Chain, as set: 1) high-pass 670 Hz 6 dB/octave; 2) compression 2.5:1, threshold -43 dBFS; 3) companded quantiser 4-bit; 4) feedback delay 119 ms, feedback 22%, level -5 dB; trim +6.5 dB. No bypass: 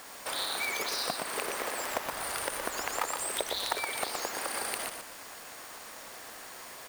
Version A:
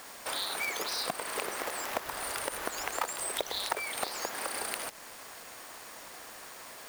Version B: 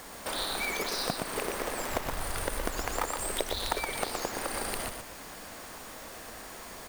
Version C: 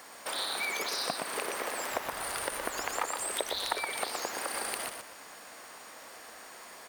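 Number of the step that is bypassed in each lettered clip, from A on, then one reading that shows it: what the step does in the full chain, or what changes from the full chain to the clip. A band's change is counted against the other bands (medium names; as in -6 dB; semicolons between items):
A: 4, loudness change -1.5 LU; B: 1, 125 Hz band +12.5 dB; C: 3, distortion -10 dB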